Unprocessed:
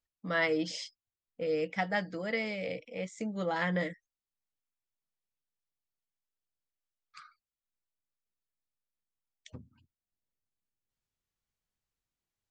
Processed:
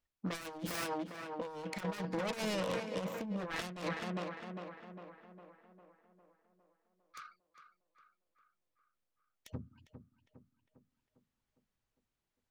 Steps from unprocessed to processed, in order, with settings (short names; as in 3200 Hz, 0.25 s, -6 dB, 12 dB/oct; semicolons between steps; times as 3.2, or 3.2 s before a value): self-modulated delay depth 0.99 ms; high shelf 4300 Hz -9 dB; tape echo 0.404 s, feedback 59%, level -9 dB, low-pass 2500 Hz; negative-ratio compressor -38 dBFS, ratio -0.5; gain +1 dB